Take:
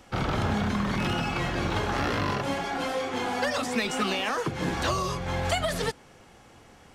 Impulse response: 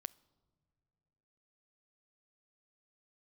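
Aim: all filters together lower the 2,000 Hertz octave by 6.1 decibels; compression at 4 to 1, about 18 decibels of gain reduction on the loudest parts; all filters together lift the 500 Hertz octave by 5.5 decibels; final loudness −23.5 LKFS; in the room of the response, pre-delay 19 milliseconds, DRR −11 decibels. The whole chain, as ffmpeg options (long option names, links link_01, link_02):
-filter_complex "[0:a]equalizer=frequency=500:width_type=o:gain=7,equalizer=frequency=2000:width_type=o:gain=-8.5,acompressor=threshold=-43dB:ratio=4,asplit=2[link_01][link_02];[1:a]atrim=start_sample=2205,adelay=19[link_03];[link_02][link_03]afir=irnorm=-1:irlink=0,volume=15dB[link_04];[link_01][link_04]amix=inputs=2:normalize=0,volume=8dB"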